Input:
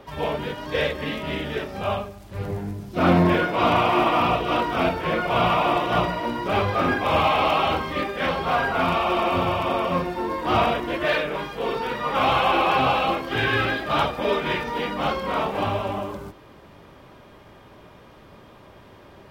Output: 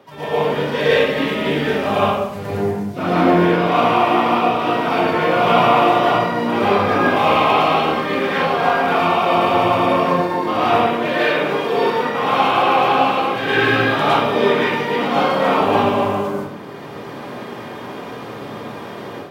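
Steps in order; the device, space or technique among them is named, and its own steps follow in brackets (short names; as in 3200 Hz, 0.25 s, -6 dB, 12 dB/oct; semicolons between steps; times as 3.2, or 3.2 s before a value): far laptop microphone (reverb RT60 0.85 s, pre-delay 0.103 s, DRR -8 dB; HPF 120 Hz 24 dB/oct; AGC); gain -2.5 dB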